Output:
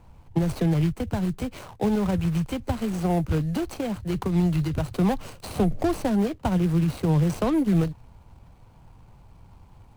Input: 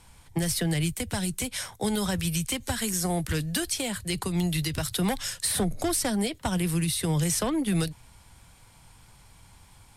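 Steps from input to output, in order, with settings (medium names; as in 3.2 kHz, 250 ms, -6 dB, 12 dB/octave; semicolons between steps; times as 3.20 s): median filter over 25 samples; trim +5 dB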